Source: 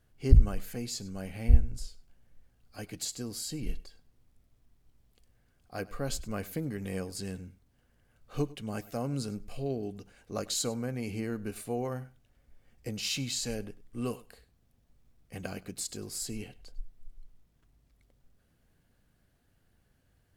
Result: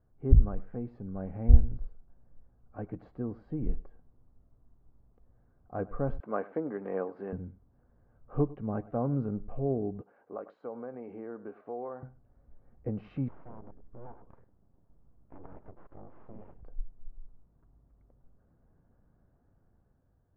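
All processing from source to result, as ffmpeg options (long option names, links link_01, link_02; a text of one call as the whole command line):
ffmpeg -i in.wav -filter_complex "[0:a]asettb=1/sr,asplit=3[link_01][link_02][link_03];[link_01]atrim=end=6.204[link_04];[link_02]atrim=start=6.2:end=7.33,asetpts=PTS-STARTPTS,afade=type=in:duration=0.004:curve=qsin,afade=type=out:start_time=1.126:duration=0.004:curve=qsin,highpass=270,lowpass=2400,aemphasis=mode=production:type=riaa,acontrast=47[link_05];[link_03]atrim=start=7.326[link_06];[link_04][link_05]acrossfade=duration=0.004:curve1=hsin:curve2=qsin[link_07];[link_07][link_06]acrossfade=duration=0.004:curve1=qsin:curve2=hsin,asettb=1/sr,asplit=3[link_08][link_09][link_10];[link_08]atrim=end=10.014[link_11];[link_09]atrim=start=10.01:end=12.03,asetpts=PTS-STARTPTS,afade=type=in:duration=0.004:curve=qsin,afade=type=out:start_time=2.016:duration=0.004:curve=qsin,highpass=420,acompressor=threshold=-41dB:ratio=2:attack=3.2:release=140:knee=1:detection=peak[link_12];[link_10]atrim=start=12.026[link_13];[link_11][link_12]acrossfade=duration=0.004:curve1=hsin:curve2=qsin[link_14];[link_14][link_13]acrossfade=duration=0.004:curve1=qsin:curve2=hsin,asettb=1/sr,asplit=3[link_15][link_16][link_17];[link_15]atrim=end=13.284[link_18];[link_16]atrim=start=13.28:end=16.63,asetpts=PTS-STARTPTS,afade=type=in:duration=0.004:curve=qsin,afade=type=out:start_time=3.346:duration=0.004:curve=qsin,acompressor=threshold=-47dB:ratio=3:attack=3.2:release=140:knee=1:detection=peak,highshelf=frequency=5300:gain=-4.5,aeval=exprs='abs(val(0))':channel_layout=same[link_19];[link_17]atrim=start=16.626[link_20];[link_18][link_19]acrossfade=duration=0.004:curve1=hsin:curve2=qsin[link_21];[link_21][link_20]acrossfade=duration=0.004:curve1=qsin:curve2=hsin,lowpass=frequency=1200:width=0.5412,lowpass=frequency=1200:width=1.3066,dynaudnorm=framelen=170:gausssize=9:maxgain=4.5dB,volume=-1dB" out.wav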